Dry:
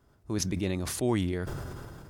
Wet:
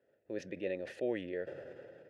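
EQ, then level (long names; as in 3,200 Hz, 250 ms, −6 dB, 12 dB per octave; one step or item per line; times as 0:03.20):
formant filter e
high-pass filter 90 Hz
high-shelf EQ 4,200 Hz −11 dB
+7.5 dB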